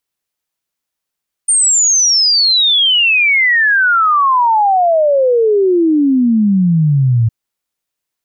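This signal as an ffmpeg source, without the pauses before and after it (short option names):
-f lavfi -i "aevalsrc='0.398*clip(min(t,5.81-t)/0.01,0,1)*sin(2*PI*9000*5.81/log(110/9000)*(exp(log(110/9000)*t/5.81)-1))':d=5.81:s=44100"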